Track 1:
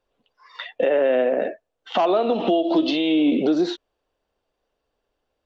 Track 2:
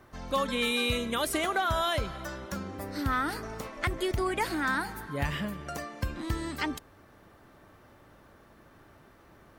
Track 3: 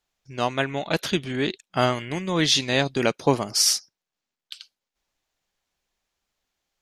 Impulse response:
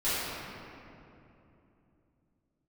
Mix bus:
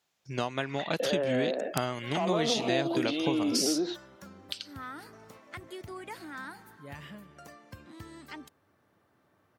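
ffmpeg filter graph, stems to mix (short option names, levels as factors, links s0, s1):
-filter_complex "[0:a]alimiter=limit=0.178:level=0:latency=1:release=95,adelay=200,volume=0.422[s0];[1:a]adelay=1700,volume=0.237[s1];[2:a]acompressor=threshold=0.0316:ratio=10,volume=1.33,asplit=2[s2][s3];[s3]apad=whole_len=497840[s4];[s1][s4]sidechaincompress=threshold=0.00562:ratio=8:attack=43:release=198[s5];[s0][s5][s2]amix=inputs=3:normalize=0,highpass=f=87:w=0.5412,highpass=f=87:w=1.3066,aeval=exprs='(mod(4.22*val(0)+1,2)-1)/4.22':c=same"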